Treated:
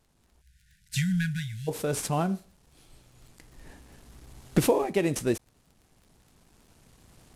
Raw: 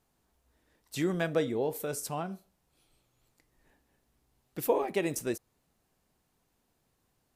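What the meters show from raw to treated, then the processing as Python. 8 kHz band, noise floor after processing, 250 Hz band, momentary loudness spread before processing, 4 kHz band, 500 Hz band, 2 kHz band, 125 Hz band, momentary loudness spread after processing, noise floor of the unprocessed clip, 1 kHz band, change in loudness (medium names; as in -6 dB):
+5.0 dB, -67 dBFS, +6.0 dB, 12 LU, +6.0 dB, +2.0 dB, +3.5 dB, +10.5 dB, 9 LU, -76 dBFS, +3.5 dB, +4.0 dB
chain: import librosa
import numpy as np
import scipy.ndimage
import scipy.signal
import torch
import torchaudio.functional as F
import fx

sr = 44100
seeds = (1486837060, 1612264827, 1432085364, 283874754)

y = fx.cvsd(x, sr, bps=64000)
y = fx.recorder_agc(y, sr, target_db=-17.5, rise_db_per_s=5.5, max_gain_db=30)
y = fx.dmg_crackle(y, sr, seeds[0], per_s=12.0, level_db=-47.0)
y = fx.low_shelf(y, sr, hz=240.0, db=8.5)
y = fx.spec_erase(y, sr, start_s=0.41, length_s=1.27, low_hz=200.0, high_hz=1400.0)
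y = y * librosa.db_to_amplitude(1.5)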